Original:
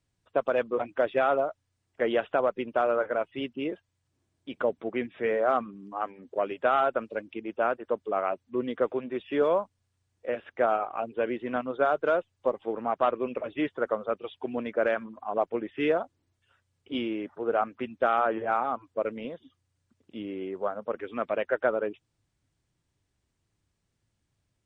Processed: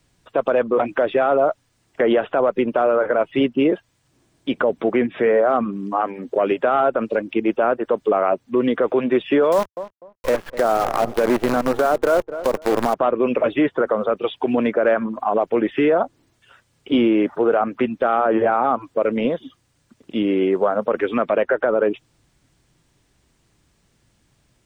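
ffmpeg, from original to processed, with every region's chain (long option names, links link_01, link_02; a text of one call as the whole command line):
ffmpeg -i in.wav -filter_complex "[0:a]asettb=1/sr,asplit=3[link_01][link_02][link_03];[link_01]atrim=end=9.524[link_04];[link_02]atrim=start=9.52:end=12.94,asetpts=PTS-STARTPTS,afade=type=in:duration=0.004:curve=qsin,afade=type=out:start_time=3.416:duration=0.004:curve=qsin,acrusher=bits=6:dc=4:mix=0:aa=0.000001,asplit=2[link_05][link_06];[link_06]adelay=248,lowpass=frequency=930:poles=1,volume=-19.5dB,asplit=2[link_07][link_08];[link_08]adelay=248,lowpass=frequency=930:poles=1,volume=0.24[link_09];[link_05][link_07][link_09]amix=inputs=3:normalize=0,atrim=end_sample=150822[link_10];[link_03]atrim=start=12.936[link_11];[link_04][link_10]acrossfade=duration=0.004:curve1=hsin:curve2=qsin[link_12];[link_12][link_11]acrossfade=duration=0.004:curve1=qsin:curve2=hsin,equalizer=frequency=89:width_type=o:width=0.35:gain=-13.5,acrossover=split=560|1700[link_13][link_14][link_15];[link_13]acompressor=threshold=-28dB:ratio=4[link_16];[link_14]acompressor=threshold=-30dB:ratio=4[link_17];[link_15]acompressor=threshold=-49dB:ratio=4[link_18];[link_16][link_17][link_18]amix=inputs=3:normalize=0,alimiter=level_in=25dB:limit=-1dB:release=50:level=0:latency=1,volume=-8dB" out.wav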